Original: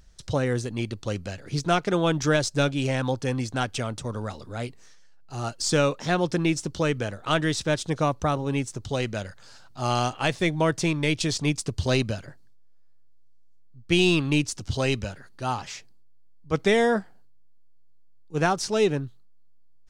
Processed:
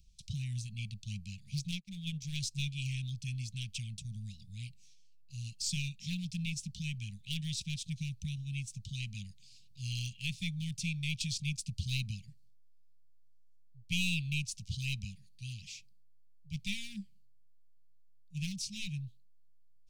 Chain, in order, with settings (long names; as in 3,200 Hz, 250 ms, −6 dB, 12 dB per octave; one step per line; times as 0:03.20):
wavefolder on the positive side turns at −19.5 dBFS
Chebyshev band-stop filter 200–2,400 Hz, order 5
0:01.71–0:02.36: expander for the loud parts 2.5 to 1, over −44 dBFS
level −7.5 dB